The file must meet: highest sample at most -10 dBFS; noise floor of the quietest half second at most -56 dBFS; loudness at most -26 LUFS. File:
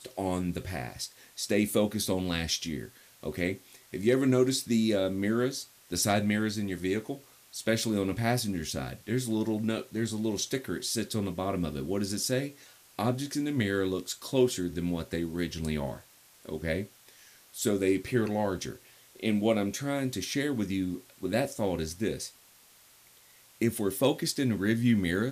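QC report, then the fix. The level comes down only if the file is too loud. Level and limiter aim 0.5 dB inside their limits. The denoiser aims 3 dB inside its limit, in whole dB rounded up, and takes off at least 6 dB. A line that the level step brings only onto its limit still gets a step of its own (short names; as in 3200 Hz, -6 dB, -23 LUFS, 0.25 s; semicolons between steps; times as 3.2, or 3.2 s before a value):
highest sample -13.0 dBFS: OK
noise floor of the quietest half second -58 dBFS: OK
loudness -30.5 LUFS: OK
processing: none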